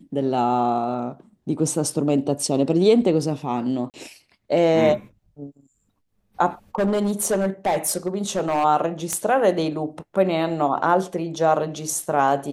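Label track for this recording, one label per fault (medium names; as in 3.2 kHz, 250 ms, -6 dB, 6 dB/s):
3.900000	3.940000	dropout 38 ms
6.750000	8.650000	clipped -16.5 dBFS
9.130000	9.130000	pop -9 dBFS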